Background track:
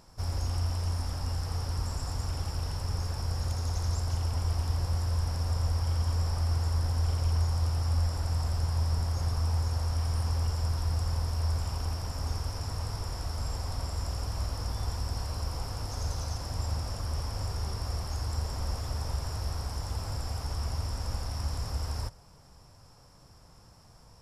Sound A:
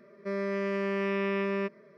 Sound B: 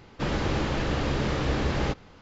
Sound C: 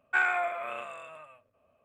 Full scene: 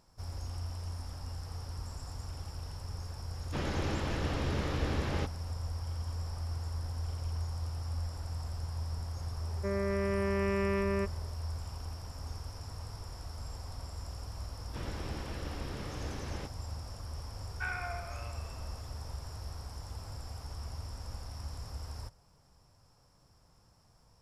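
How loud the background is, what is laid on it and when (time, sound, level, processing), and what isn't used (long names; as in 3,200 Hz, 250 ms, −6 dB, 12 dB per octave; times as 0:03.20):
background track −9 dB
0:03.33: mix in B −7.5 dB
0:09.38: mix in A −1.5 dB + low-pass filter 2,200 Hz
0:14.54: mix in B −15 dB
0:17.47: mix in C −12 dB + delay that swaps between a low-pass and a high-pass 107 ms, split 1,500 Hz, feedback 59%, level −7.5 dB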